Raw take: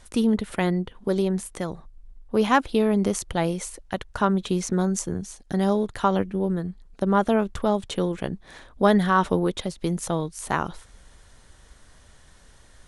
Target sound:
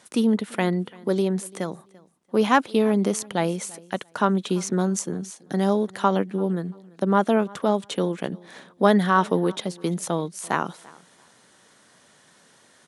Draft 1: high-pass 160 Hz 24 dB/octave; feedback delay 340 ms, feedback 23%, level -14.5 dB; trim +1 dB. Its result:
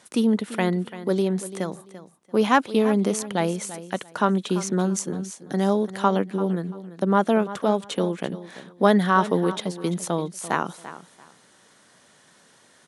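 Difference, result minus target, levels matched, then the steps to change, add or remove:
echo-to-direct +9 dB
change: feedback delay 340 ms, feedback 23%, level -23.5 dB

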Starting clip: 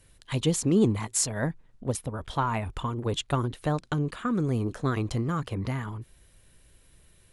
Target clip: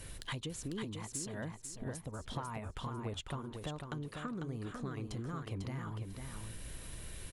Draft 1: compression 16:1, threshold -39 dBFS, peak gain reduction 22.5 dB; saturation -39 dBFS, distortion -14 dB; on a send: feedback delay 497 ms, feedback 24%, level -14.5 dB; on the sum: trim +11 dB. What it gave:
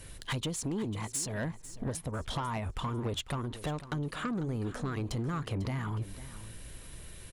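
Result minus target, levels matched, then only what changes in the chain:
compression: peak gain reduction -10 dB; echo-to-direct -9 dB
change: compression 16:1, threshold -49.5 dBFS, peak gain reduction 32.5 dB; change: feedback delay 497 ms, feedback 24%, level -5.5 dB

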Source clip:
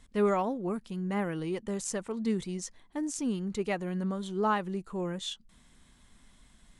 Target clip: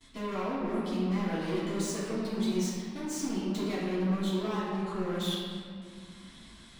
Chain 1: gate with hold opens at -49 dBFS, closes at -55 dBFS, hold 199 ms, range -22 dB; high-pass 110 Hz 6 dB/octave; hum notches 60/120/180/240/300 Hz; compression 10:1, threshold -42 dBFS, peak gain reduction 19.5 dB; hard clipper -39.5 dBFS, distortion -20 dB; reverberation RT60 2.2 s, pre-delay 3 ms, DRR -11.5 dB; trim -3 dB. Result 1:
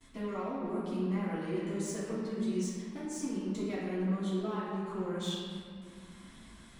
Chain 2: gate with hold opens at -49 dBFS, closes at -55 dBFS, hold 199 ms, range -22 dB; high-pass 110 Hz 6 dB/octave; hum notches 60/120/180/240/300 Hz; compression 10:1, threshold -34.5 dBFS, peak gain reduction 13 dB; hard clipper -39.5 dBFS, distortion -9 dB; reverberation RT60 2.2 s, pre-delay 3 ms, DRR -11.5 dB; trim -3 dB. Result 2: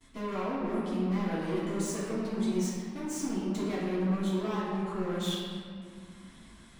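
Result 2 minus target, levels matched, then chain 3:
4 kHz band -2.5 dB
gate with hold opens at -49 dBFS, closes at -55 dBFS, hold 199 ms, range -22 dB; high-pass 110 Hz 6 dB/octave; peaking EQ 4 kHz +8 dB 1.1 oct; hum notches 60/120/180/240/300 Hz; compression 10:1, threshold -34.5 dBFS, peak gain reduction 13 dB; hard clipper -39.5 dBFS, distortion -9 dB; reverberation RT60 2.2 s, pre-delay 3 ms, DRR -11.5 dB; trim -3 dB

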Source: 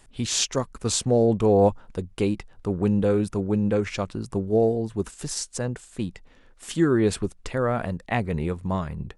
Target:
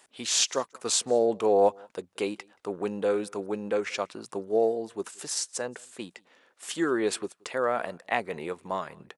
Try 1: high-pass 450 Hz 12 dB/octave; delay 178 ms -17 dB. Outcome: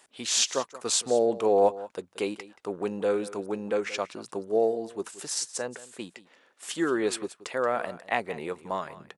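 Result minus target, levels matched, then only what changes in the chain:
echo-to-direct +11 dB
change: delay 178 ms -28 dB

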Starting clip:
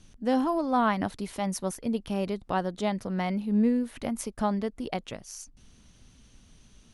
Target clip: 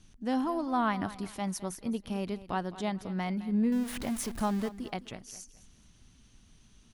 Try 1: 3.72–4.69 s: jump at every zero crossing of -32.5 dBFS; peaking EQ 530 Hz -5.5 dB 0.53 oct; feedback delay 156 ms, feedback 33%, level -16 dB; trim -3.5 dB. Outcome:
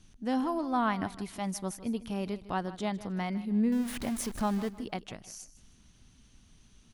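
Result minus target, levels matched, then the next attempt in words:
echo 56 ms early
3.72–4.69 s: jump at every zero crossing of -32.5 dBFS; peaking EQ 530 Hz -5.5 dB 0.53 oct; feedback delay 212 ms, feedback 33%, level -16 dB; trim -3.5 dB

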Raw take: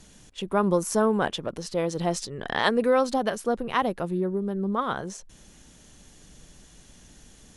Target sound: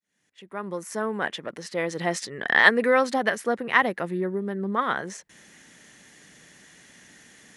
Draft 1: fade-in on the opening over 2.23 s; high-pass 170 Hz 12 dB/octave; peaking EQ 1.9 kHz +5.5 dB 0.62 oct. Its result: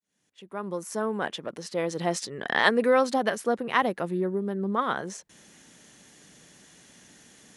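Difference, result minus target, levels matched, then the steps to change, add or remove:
2 kHz band -4.0 dB
change: peaking EQ 1.9 kHz +14 dB 0.62 oct

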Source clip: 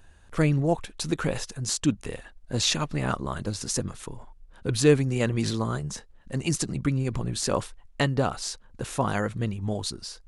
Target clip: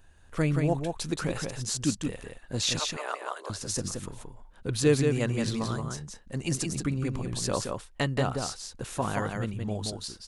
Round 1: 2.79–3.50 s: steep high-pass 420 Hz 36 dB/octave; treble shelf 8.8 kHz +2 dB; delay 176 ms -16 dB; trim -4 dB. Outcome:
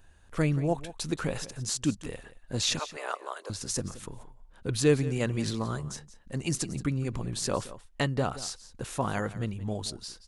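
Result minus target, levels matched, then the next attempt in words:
echo-to-direct -11.5 dB
2.79–3.50 s: steep high-pass 420 Hz 36 dB/octave; treble shelf 8.8 kHz +2 dB; delay 176 ms -4.5 dB; trim -4 dB

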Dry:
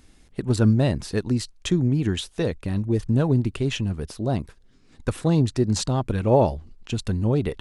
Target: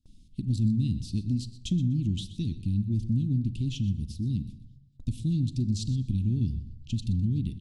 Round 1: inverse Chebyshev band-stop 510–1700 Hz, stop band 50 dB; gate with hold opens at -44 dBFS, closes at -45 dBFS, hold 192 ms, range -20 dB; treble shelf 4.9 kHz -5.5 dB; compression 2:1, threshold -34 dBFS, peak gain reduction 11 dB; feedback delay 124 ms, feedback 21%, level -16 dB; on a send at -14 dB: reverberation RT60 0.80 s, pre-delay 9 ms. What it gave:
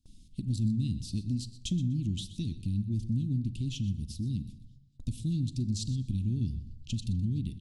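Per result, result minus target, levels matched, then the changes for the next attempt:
8 kHz band +5.5 dB; compression: peak gain reduction +4 dB
change: treble shelf 4.9 kHz -13 dB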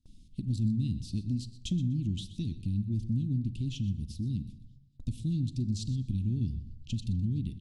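compression: peak gain reduction +3.5 dB
change: compression 2:1, threshold -26.5 dBFS, peak gain reduction 7.5 dB

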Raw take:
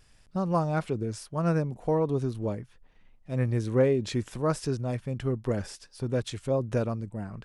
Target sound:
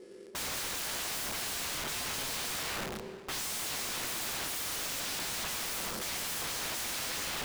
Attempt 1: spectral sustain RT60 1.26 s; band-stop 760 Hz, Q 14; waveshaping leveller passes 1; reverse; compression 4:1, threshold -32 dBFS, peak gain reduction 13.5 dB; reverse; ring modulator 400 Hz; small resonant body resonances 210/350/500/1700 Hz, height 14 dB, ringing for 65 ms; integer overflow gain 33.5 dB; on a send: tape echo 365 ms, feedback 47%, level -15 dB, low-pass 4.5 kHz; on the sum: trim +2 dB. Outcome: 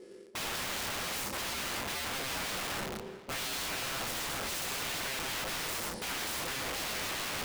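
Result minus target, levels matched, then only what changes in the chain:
compression: peak gain reduction +6.5 dB
change: compression 4:1, threshold -23.5 dBFS, peak gain reduction 7.5 dB

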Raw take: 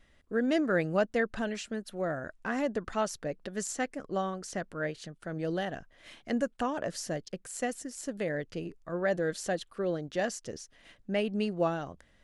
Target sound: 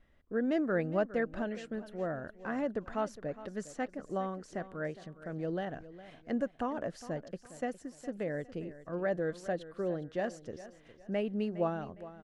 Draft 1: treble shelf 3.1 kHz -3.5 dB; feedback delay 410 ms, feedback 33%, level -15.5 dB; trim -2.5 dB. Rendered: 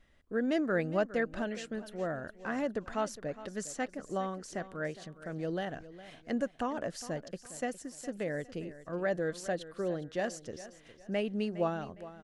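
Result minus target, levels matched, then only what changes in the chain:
8 kHz band +9.0 dB
change: treble shelf 3.1 kHz -15 dB

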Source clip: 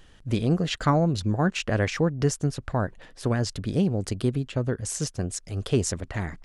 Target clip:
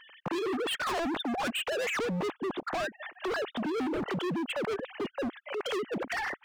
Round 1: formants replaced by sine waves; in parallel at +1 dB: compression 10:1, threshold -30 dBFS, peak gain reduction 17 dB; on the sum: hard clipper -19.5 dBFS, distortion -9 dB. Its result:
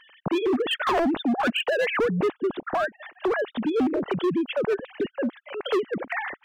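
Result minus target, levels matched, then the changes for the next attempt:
hard clipper: distortion -6 dB
change: hard clipper -30 dBFS, distortion -3 dB

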